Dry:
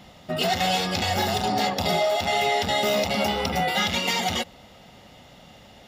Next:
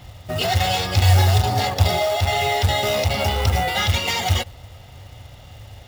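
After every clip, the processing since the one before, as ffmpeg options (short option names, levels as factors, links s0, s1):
-af "lowshelf=f=140:t=q:w=3:g=10.5,acrusher=bits=4:mode=log:mix=0:aa=0.000001,volume=1.26"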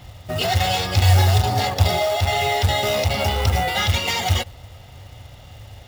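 -af anull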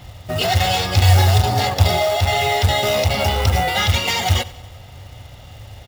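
-af "aecho=1:1:93|186|279|372:0.106|0.0561|0.0298|0.0158,volume=1.33"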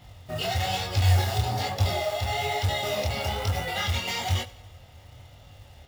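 -af "flanger=delay=19.5:depth=7.2:speed=1.1,volume=0.447"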